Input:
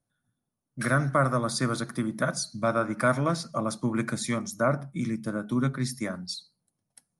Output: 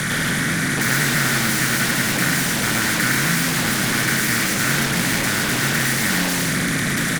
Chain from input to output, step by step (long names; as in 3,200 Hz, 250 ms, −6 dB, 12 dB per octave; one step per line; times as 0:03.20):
compressor on every frequency bin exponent 0.2
drawn EQ curve 130 Hz 0 dB, 180 Hz +7 dB, 260 Hz −7 dB, 830 Hz −27 dB, 1,900 Hz +14 dB, 3,800 Hz −12 dB, 6,900 Hz +1 dB
in parallel at −9 dB: sine wavefolder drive 19 dB, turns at −9.5 dBFS
on the sum: echo with shifted repeats 107 ms, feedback 36%, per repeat +89 Hz, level −4 dB
level −3.5 dB